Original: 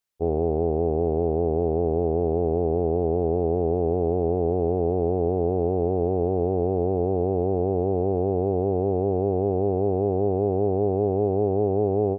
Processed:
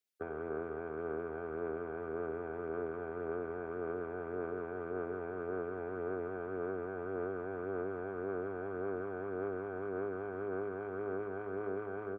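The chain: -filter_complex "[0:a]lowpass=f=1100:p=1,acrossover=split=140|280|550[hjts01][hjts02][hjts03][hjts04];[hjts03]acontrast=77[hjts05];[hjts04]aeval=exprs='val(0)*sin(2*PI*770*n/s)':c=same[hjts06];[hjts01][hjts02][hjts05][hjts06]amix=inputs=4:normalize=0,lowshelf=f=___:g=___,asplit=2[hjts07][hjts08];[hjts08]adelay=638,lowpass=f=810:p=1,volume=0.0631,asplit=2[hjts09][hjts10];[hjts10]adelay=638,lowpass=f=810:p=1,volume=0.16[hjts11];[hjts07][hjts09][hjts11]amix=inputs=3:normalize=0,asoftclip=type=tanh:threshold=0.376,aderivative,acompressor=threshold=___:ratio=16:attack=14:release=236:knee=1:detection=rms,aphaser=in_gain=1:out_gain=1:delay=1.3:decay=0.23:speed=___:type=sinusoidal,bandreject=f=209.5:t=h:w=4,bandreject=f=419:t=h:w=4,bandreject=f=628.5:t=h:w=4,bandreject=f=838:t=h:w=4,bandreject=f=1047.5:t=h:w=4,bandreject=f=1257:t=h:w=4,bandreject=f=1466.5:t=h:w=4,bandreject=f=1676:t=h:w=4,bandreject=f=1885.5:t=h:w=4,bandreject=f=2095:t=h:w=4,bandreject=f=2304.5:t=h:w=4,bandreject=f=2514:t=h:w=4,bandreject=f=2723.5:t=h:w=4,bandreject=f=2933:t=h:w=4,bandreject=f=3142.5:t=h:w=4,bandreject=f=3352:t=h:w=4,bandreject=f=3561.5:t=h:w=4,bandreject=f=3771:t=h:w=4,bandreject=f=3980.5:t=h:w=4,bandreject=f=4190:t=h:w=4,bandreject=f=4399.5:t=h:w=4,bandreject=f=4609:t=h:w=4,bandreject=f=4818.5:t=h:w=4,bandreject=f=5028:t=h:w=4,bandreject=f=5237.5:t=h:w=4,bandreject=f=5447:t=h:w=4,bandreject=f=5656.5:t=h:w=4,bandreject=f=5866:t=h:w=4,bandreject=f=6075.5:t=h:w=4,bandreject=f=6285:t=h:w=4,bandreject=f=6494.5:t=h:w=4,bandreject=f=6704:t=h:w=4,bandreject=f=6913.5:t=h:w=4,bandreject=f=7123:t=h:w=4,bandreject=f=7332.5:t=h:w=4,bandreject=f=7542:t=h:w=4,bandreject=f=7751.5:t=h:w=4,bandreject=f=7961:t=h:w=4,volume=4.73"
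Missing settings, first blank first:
300, 8.5, 0.00398, 1.8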